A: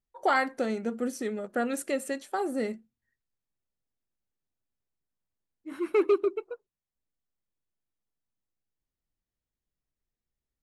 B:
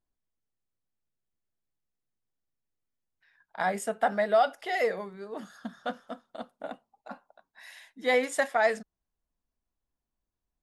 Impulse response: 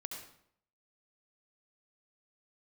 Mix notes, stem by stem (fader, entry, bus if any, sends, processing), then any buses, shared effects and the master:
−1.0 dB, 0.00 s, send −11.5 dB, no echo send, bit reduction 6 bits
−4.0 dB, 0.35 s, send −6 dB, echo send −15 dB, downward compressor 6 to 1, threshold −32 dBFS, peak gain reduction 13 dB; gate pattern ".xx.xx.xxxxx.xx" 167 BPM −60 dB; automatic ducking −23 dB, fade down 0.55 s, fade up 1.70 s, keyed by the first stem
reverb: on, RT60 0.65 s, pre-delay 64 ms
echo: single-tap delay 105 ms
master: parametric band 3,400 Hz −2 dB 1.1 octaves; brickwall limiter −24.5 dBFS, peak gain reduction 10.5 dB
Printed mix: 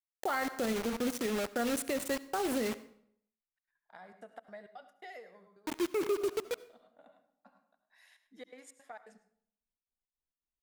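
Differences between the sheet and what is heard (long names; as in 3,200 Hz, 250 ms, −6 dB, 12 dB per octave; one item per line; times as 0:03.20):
stem B −4.0 dB → −15.0 dB
master: missing parametric band 3,400 Hz −2 dB 1.1 octaves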